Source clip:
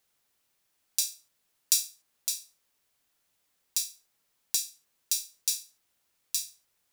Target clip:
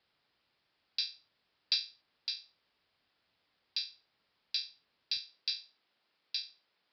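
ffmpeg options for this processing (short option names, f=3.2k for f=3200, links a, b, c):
-af "asetnsamples=n=441:p=0,asendcmd='5.17 highpass f 190',highpass=44,asoftclip=type=tanh:threshold=-6.5dB,aresample=11025,aresample=44100,volume=2.5dB"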